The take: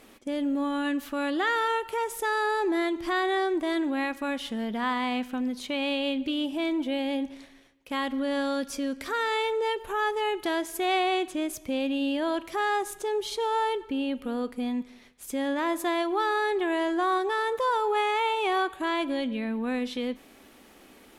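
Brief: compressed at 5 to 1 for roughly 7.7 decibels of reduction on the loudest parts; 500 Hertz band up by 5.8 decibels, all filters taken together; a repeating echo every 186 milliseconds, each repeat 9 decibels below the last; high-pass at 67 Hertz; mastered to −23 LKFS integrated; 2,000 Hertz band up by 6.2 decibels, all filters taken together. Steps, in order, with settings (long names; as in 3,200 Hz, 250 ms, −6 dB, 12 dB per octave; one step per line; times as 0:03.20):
high-pass filter 67 Hz
parametric band 500 Hz +7 dB
parametric band 2,000 Hz +7 dB
downward compressor 5 to 1, threshold −26 dBFS
repeating echo 186 ms, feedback 35%, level −9 dB
level +6 dB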